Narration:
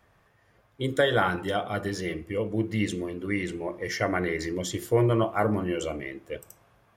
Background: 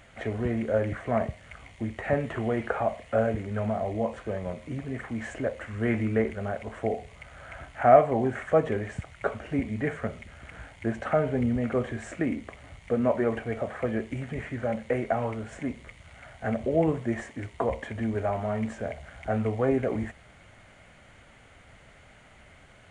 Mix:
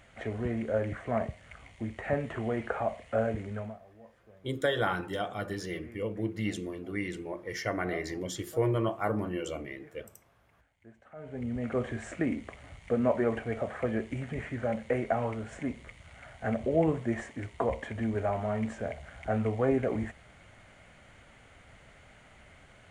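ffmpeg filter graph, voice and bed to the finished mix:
-filter_complex "[0:a]adelay=3650,volume=-5.5dB[a];[1:a]volume=19.5dB,afade=t=out:st=3.48:d=0.31:silence=0.0841395,afade=t=in:st=11.15:d=0.76:silence=0.0668344[b];[a][b]amix=inputs=2:normalize=0"

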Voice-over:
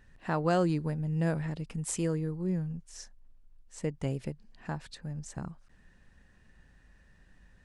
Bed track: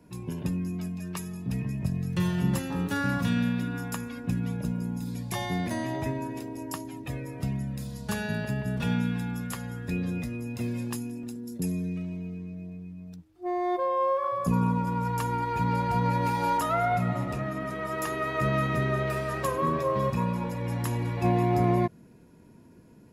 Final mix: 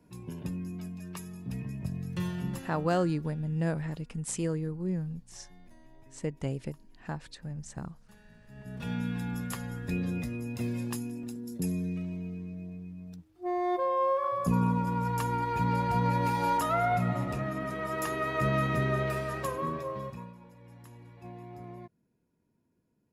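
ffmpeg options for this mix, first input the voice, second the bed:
-filter_complex "[0:a]adelay=2400,volume=-0.5dB[a];[1:a]volume=20.5dB,afade=t=out:st=2.22:d=0.92:silence=0.0794328,afade=t=in:st=8.47:d=0.88:silence=0.0473151,afade=t=out:st=19.01:d=1.34:silence=0.1[b];[a][b]amix=inputs=2:normalize=0"

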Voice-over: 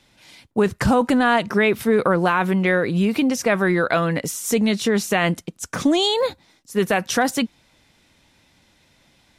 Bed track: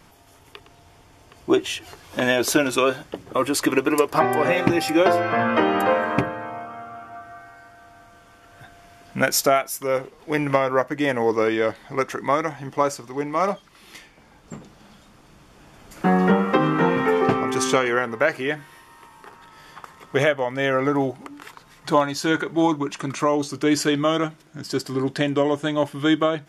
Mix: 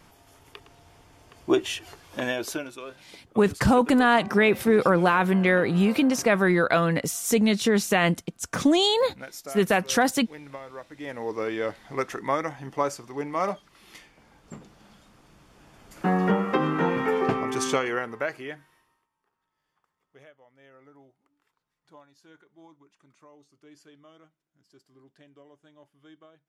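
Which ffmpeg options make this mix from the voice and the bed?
-filter_complex "[0:a]adelay=2800,volume=-2dB[a];[1:a]volume=12.5dB,afade=t=out:st=1.79:d=0.98:silence=0.133352,afade=t=in:st=10.86:d=1.03:silence=0.16788,afade=t=out:st=17.69:d=1.37:silence=0.0375837[b];[a][b]amix=inputs=2:normalize=0"

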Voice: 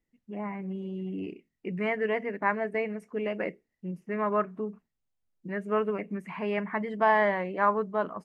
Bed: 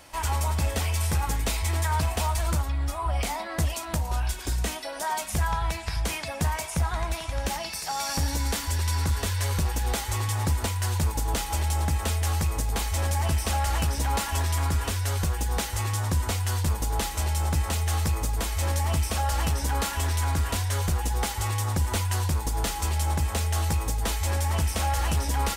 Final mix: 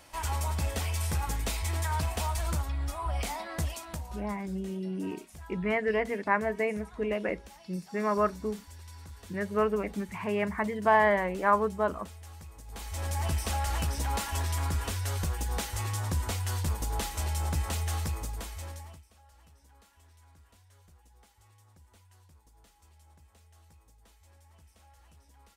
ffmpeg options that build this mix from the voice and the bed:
-filter_complex "[0:a]adelay=3850,volume=0.5dB[a];[1:a]volume=11.5dB,afade=t=out:st=3.5:d=0.86:silence=0.149624,afade=t=in:st=12.64:d=0.59:silence=0.149624,afade=t=out:st=17.81:d=1.22:silence=0.0375837[b];[a][b]amix=inputs=2:normalize=0"

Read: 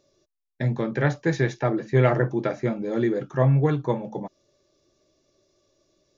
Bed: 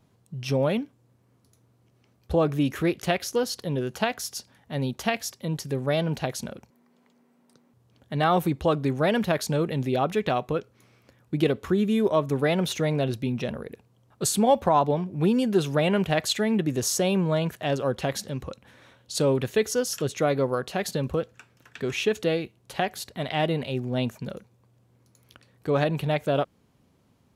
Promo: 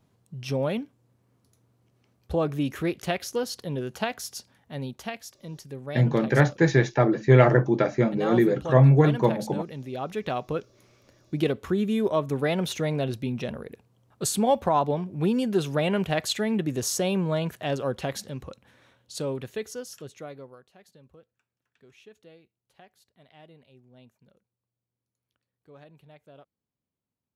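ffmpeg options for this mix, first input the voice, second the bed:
-filter_complex "[0:a]adelay=5350,volume=3dB[a];[1:a]volume=5dB,afade=t=out:st=4.45:d=0.73:silence=0.446684,afade=t=in:st=9.9:d=0.67:silence=0.398107,afade=t=out:st=17.77:d=2.89:silence=0.0562341[b];[a][b]amix=inputs=2:normalize=0"

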